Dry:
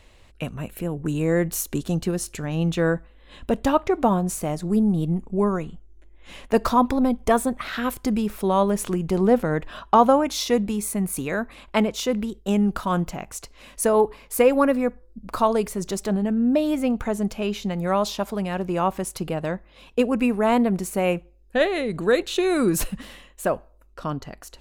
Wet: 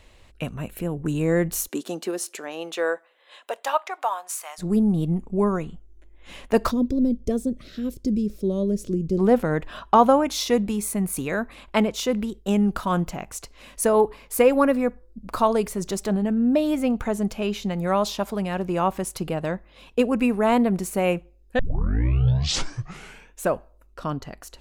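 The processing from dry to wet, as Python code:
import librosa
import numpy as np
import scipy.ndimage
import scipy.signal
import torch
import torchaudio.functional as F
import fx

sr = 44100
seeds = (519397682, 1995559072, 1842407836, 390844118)

y = fx.highpass(x, sr, hz=fx.line((1.67, 240.0), (4.58, 990.0)), slope=24, at=(1.67, 4.58), fade=0.02)
y = fx.curve_eq(y, sr, hz=(360.0, 580.0, 830.0, 2900.0, 5400.0, 9700.0), db=(0, -7, -29, -15, -4, -13), at=(6.7, 9.18), fade=0.02)
y = fx.edit(y, sr, fx.tape_start(start_s=21.59, length_s=1.94), tone=tone)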